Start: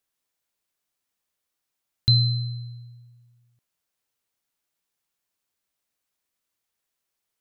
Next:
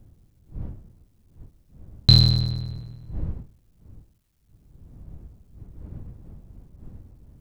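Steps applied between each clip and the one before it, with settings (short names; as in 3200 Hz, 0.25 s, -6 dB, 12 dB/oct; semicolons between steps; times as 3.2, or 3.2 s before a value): cycle switcher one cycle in 3, muted; wind noise 98 Hz -46 dBFS; gain +6.5 dB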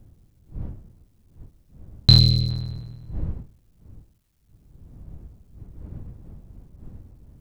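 spectral gain 2.19–2.49, 560–2000 Hz -12 dB; gain +1 dB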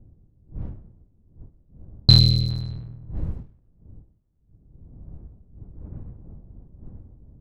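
low-pass opened by the level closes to 520 Hz, open at -22 dBFS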